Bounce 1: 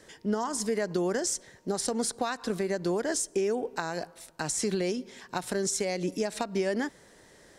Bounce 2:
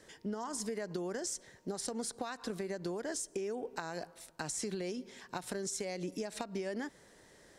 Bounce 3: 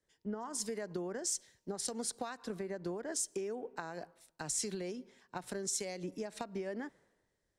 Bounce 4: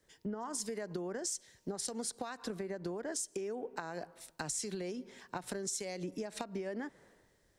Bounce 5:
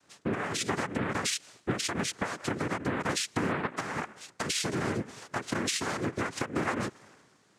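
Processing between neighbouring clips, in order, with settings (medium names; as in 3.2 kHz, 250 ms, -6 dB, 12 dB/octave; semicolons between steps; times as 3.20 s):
compression, threshold -30 dBFS, peak gain reduction 7 dB; trim -4.5 dB
three bands expanded up and down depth 100%; trim -1.5 dB
compression 3:1, threshold -51 dBFS, peak gain reduction 14.5 dB; trim +11 dB
noise-vocoded speech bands 3; loudspeaker Doppler distortion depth 0.43 ms; trim +8.5 dB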